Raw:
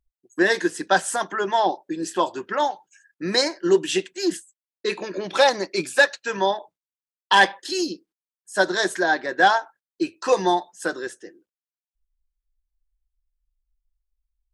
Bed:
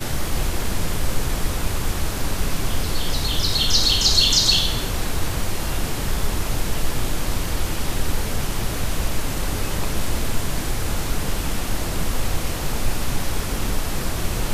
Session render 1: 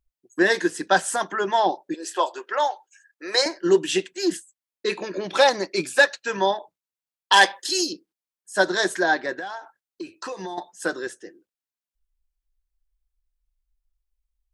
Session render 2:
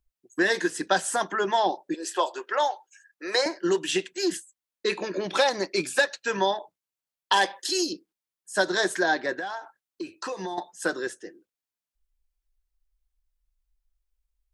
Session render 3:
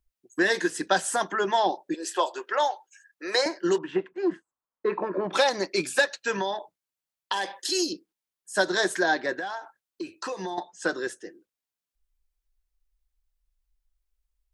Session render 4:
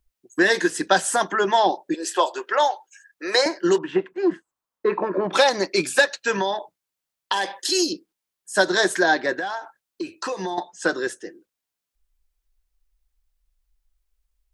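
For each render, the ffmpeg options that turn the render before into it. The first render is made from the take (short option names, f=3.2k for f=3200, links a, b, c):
-filter_complex "[0:a]asettb=1/sr,asplit=3[a][b][c];[a]atrim=end=1.944[d];[b]atrim=start=1.94:end=3.46,asetpts=PTS-STARTPTS,afade=t=in:d=0.004:c=qsin,afade=t=out:st=1.516:d=0.004:c=qsin,highpass=f=420:w=0.5412,highpass=f=420:w=1.3066[e];[c]atrim=start=3.456[f];[d][e]acrossfade=d=0.004:c1=hsin:c2=qsin[g];[g][f]acrossfade=d=0.004:c1=qsin:c2=hsin,asettb=1/sr,asplit=3[h][i][j];[h]atrim=end=7.324[k];[i]atrim=start=7.32:end=7.93,asetpts=PTS-STARTPTS,afade=t=in:d=0.004:c=qsin,afade=t=out:st=0.606:d=0.004:c=qsin,bass=f=250:g=-10,treble=f=4k:g=8[l];[j]atrim=start=7.926[m];[k][l]acrossfade=d=0.004:c1=hsin:c2=qsin[n];[n][m]acrossfade=d=0.004:c1=qsin:c2=hsin,asettb=1/sr,asplit=3[o][p][q];[o]atrim=end=9.324[r];[p]atrim=start=9.32:end=10.58,asetpts=PTS-STARTPTS,afade=t=in:d=0.004:c=qsin,afade=t=out:st=1.256:d=0.004:c=qsin,acompressor=threshold=-29dB:ratio=12:attack=3.2:release=140:knee=1:detection=peak[s];[q]atrim=start=10.576[t];[r][s]acrossfade=d=0.004:c1=hsin:c2=qsin[u];[u][t]acrossfade=d=0.004:c1=qsin:c2=hsin"
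-filter_complex "[0:a]acrossover=split=800|2200[a][b][c];[a]acompressor=threshold=-23dB:ratio=4[d];[b]acompressor=threshold=-27dB:ratio=4[e];[c]acompressor=threshold=-27dB:ratio=4[f];[d][e][f]amix=inputs=3:normalize=0"
-filter_complex "[0:a]asettb=1/sr,asplit=3[a][b][c];[a]atrim=end=3.784[d];[b]atrim=start=3.78:end=5.33,asetpts=PTS-STARTPTS,afade=t=in:d=0.004:c=qsin,afade=t=out:st=1.546:d=0.004:c=qsin,lowpass=f=1.1k:t=q:w=2.8[e];[c]atrim=start=5.326[f];[d][e]acrossfade=d=0.004:c1=hsin:c2=qsin[g];[g][f]acrossfade=d=0.004:c1=qsin:c2=hsin,asettb=1/sr,asplit=3[h][i][j];[h]atrim=end=6.404[k];[i]atrim=start=6.4:end=7.62,asetpts=PTS-STARTPTS,afade=t=in:d=0.004:c=qsin,afade=t=out:st=1.216:d=0.004:c=qsin,acompressor=threshold=-23dB:ratio=6:attack=3.2:release=140:knee=1:detection=peak[l];[j]atrim=start=7.616[m];[k][l]acrossfade=d=0.004:c1=hsin:c2=qsin[n];[n][m]acrossfade=d=0.004:c1=qsin:c2=hsin,asettb=1/sr,asplit=3[o][p][q];[o]atrim=end=10.504[r];[p]atrim=start=10.5:end=11.01,asetpts=PTS-STARTPTS,afade=t=in:d=0.004:c=qsin,afade=t=out:st=0.506:d=0.004:c=qsin,lowpass=f=7.4k:w=0.5412,lowpass=f=7.4k:w=1.3066[s];[q]atrim=start=11.006[t];[r][s]acrossfade=d=0.004:c1=hsin:c2=qsin[u];[u][t]acrossfade=d=0.004:c1=qsin:c2=hsin"
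-af "volume=5dB"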